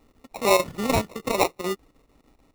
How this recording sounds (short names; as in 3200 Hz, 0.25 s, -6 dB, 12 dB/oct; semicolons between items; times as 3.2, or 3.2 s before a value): a quantiser's noise floor 12-bit, dither triangular; chopped level 6.7 Hz, depth 60%, duty 80%; aliases and images of a low sample rate 1600 Hz, jitter 0%